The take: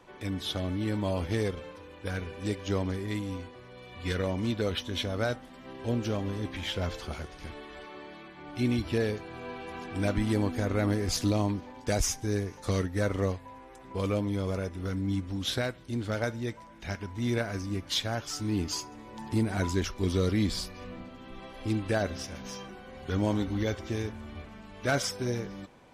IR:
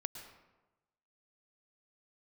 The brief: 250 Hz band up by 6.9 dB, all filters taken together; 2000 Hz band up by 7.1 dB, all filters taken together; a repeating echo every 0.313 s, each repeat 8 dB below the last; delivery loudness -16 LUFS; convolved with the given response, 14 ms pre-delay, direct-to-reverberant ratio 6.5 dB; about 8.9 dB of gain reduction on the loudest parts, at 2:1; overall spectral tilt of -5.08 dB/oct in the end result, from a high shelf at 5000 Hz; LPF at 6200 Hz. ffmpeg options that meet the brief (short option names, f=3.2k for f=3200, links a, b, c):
-filter_complex "[0:a]lowpass=6.2k,equalizer=f=250:t=o:g=8.5,equalizer=f=2k:t=o:g=8.5,highshelf=f=5k:g=5,acompressor=threshold=-34dB:ratio=2,aecho=1:1:313|626|939|1252|1565:0.398|0.159|0.0637|0.0255|0.0102,asplit=2[a][b];[1:a]atrim=start_sample=2205,adelay=14[c];[b][c]afir=irnorm=-1:irlink=0,volume=-5dB[d];[a][d]amix=inputs=2:normalize=0,volume=16.5dB"